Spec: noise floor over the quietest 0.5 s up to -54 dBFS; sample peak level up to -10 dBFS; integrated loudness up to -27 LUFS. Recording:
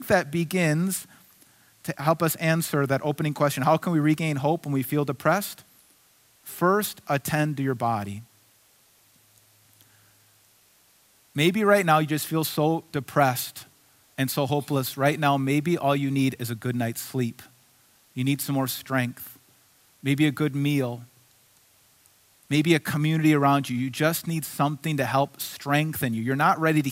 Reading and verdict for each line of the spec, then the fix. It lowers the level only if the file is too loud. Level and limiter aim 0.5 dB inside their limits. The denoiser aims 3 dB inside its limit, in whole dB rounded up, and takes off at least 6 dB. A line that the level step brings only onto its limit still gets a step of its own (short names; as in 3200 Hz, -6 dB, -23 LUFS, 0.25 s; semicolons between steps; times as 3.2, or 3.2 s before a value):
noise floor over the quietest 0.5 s -60 dBFS: OK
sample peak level -5.0 dBFS: fail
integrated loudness -24.5 LUFS: fail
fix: gain -3 dB; limiter -10.5 dBFS